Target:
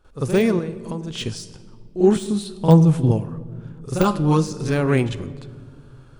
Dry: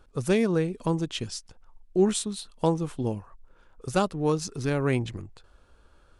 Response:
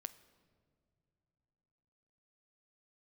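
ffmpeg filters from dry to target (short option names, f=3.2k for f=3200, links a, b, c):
-filter_complex "[0:a]asettb=1/sr,asplit=3[a][b][c];[a]atrim=end=0.544[d];[b]atrim=start=0.54:end=1.06,asetpts=PTS-STARTPTS,afade=t=in:d=0.004:c=qsin,afade=t=out:st=0.516:d=0.004:c=qsin,acompressor=threshold=-35dB:ratio=4[e];[c]atrim=start=1.056[f];[d][e]acrossfade=d=0.004:c1=hsin:c2=qsin[g];[g][f]acrossfade=d=0.004:c1=qsin:c2=hsin,asettb=1/sr,asplit=3[h][i][j];[h]atrim=end=2.114[k];[i]atrim=start=2.11:end=3.07,asetpts=PTS-STARTPTS,afade=t=in:d=0.004:c=qsin,afade=t=out:st=0.956:d=0.004:c=qsin,equalizer=f=140:t=o:w=1.1:g=11.5[l];[j]atrim=start=3.066[m];[k][l]acrossfade=d=0.004:c1=hsin:c2=qsin[n];[n][m]acrossfade=d=0.004:c1=qsin:c2=hsin,asettb=1/sr,asplit=3[o][p][q];[o]atrim=end=3.904[r];[p]atrim=start=3.9:end=4.43,asetpts=PTS-STARTPTS,afade=t=in:d=0.004:c=qsin,afade=t=out:st=0.526:d=0.004:c=qsin,aecho=1:1:5.8:0.79,atrim=end_sample=23373[s];[q]atrim=start=4.426[t];[r][s]acrossfade=d=0.004:c1=hsin:c2=qsin[u];[u][t]acrossfade=d=0.004:c1=qsin:c2=hsin,asplit=2[v][w];[1:a]atrim=start_sample=2205,adelay=47[x];[w][x]afir=irnorm=-1:irlink=0,volume=15dB[y];[v][y]amix=inputs=2:normalize=0,deesser=0.5,volume=-5dB"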